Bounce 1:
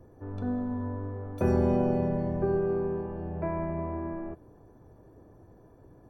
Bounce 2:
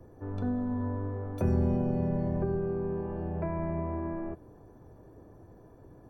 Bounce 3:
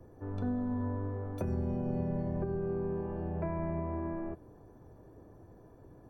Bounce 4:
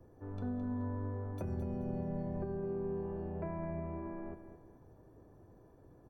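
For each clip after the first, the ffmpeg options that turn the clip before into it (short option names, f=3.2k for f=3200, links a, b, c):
-filter_complex "[0:a]acrossover=split=220[a][b];[b]acompressor=threshold=-34dB:ratio=6[c];[a][c]amix=inputs=2:normalize=0,volume=1.5dB"
-af "alimiter=limit=-22.5dB:level=0:latency=1:release=189,volume=-2dB"
-af "aecho=1:1:214|428|642:0.299|0.0955|0.0306,volume=-5dB"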